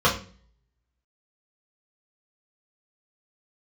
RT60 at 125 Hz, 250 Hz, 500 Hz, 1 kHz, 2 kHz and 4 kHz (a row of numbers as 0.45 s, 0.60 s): 0.65 s, 0.60 s, 0.45 s, 0.35 s, 0.40 s, 0.40 s